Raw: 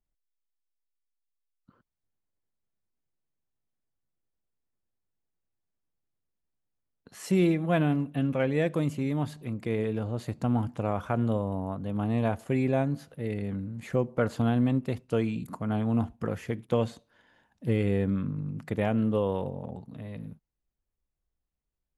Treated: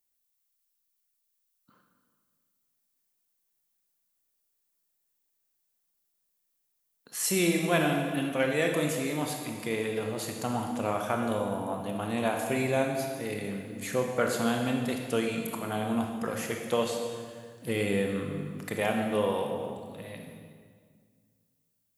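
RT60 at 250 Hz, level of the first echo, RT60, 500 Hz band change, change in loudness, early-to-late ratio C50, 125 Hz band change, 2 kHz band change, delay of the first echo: 2.2 s, no echo audible, 1.8 s, +1.0 dB, −1.0 dB, 3.5 dB, −7.0 dB, +6.0 dB, no echo audible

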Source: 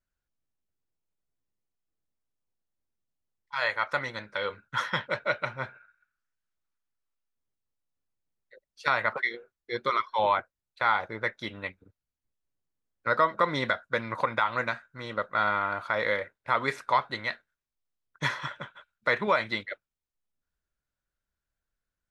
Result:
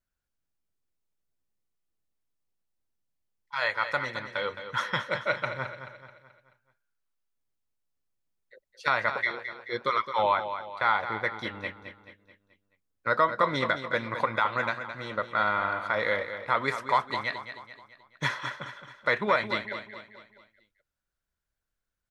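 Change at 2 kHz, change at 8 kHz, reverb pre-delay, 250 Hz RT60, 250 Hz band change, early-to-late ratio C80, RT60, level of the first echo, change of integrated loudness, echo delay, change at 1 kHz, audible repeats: +0.5 dB, can't be measured, no reverb audible, no reverb audible, +0.5 dB, no reverb audible, no reverb audible, −10.0 dB, +0.5 dB, 216 ms, +0.5 dB, 4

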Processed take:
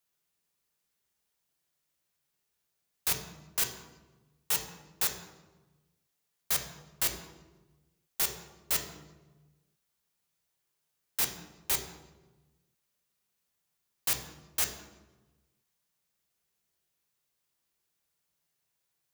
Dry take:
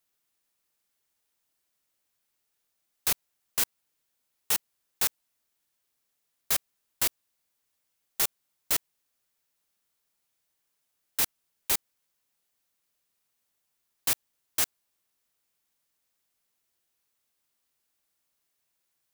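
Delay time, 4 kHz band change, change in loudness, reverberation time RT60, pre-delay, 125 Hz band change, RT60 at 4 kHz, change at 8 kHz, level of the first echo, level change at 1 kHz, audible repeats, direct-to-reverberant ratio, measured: no echo audible, −2.0 dB, −2.5 dB, 1.2 s, 3 ms, +3.5 dB, 0.80 s, −2.0 dB, no echo audible, −2.0 dB, no echo audible, 4.0 dB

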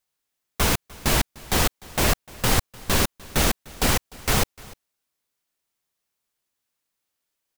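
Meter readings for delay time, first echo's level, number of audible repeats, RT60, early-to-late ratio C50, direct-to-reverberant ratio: 300 ms, −22.5 dB, 1, no reverb audible, no reverb audible, no reverb audible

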